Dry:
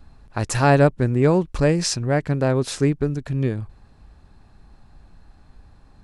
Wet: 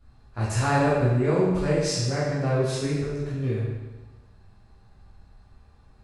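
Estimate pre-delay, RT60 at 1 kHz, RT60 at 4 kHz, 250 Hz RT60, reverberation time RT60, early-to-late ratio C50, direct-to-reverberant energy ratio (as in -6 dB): 11 ms, 1.2 s, 1.1 s, 1.2 s, 1.2 s, -0.5 dB, -10.0 dB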